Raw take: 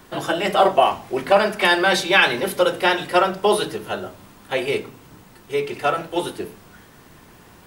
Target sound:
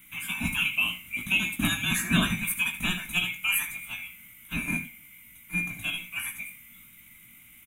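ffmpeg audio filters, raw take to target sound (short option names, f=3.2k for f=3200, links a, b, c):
-af "afftfilt=real='real(if(lt(b,920),b+92*(1-2*mod(floor(b/92),2)),b),0)':imag='imag(if(lt(b,920),b+92*(1-2*mod(floor(b/92),2)),b),0)':win_size=2048:overlap=0.75,firequalizer=gain_entry='entry(130,0);entry(210,7);entry(430,-24);entry(1400,-7);entry(4600,-20);entry(9600,4)':delay=0.05:min_phase=1,aecho=1:1:17|78:0.501|0.224"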